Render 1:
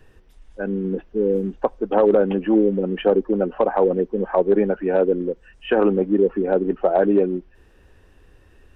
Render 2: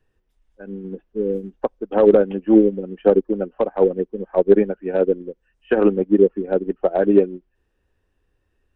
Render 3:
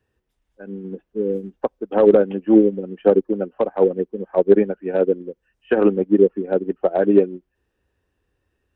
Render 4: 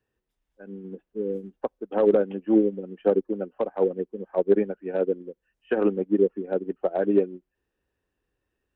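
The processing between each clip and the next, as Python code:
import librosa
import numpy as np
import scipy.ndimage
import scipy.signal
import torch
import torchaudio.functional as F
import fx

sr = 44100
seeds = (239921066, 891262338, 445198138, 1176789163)

y1 = fx.dynamic_eq(x, sr, hz=940.0, q=1.2, threshold_db=-33.0, ratio=4.0, max_db=-6)
y1 = fx.upward_expand(y1, sr, threshold_db=-30.0, expansion=2.5)
y1 = F.gain(torch.from_numpy(y1), 7.0).numpy()
y2 = scipy.signal.sosfilt(scipy.signal.butter(2, 51.0, 'highpass', fs=sr, output='sos'), y1)
y3 = fx.peak_eq(y2, sr, hz=79.0, db=-7.5, octaves=0.77)
y3 = F.gain(torch.from_numpy(y3), -6.5).numpy()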